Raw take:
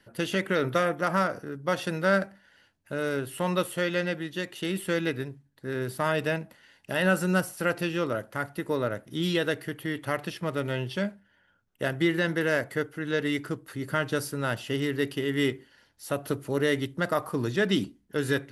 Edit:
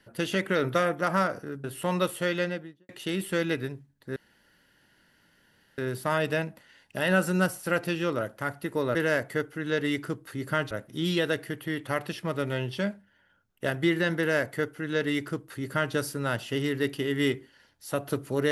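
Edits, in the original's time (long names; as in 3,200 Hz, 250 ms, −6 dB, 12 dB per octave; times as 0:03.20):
0:01.64–0:03.20: remove
0:03.91–0:04.45: fade out and dull
0:05.72: splice in room tone 1.62 s
0:12.36–0:14.12: duplicate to 0:08.89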